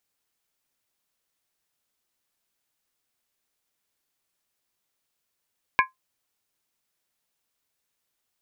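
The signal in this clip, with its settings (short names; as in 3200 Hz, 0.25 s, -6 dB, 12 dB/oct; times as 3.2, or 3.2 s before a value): skin hit, lowest mode 1040 Hz, modes 4, decay 0.15 s, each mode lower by 2 dB, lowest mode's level -13.5 dB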